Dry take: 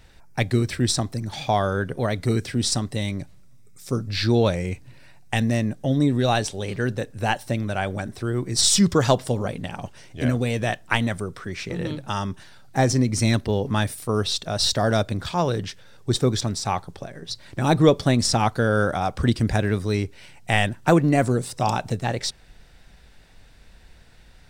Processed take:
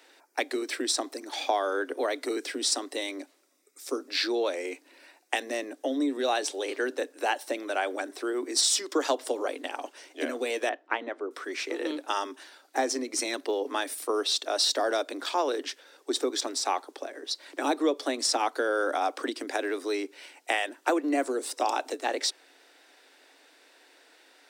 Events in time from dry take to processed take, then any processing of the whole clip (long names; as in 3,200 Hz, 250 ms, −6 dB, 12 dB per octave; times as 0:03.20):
0:10.69–0:11.31: head-to-tape spacing loss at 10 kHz 37 dB
whole clip: downward compressor 5 to 1, threshold −21 dBFS; Butterworth high-pass 270 Hz 96 dB per octave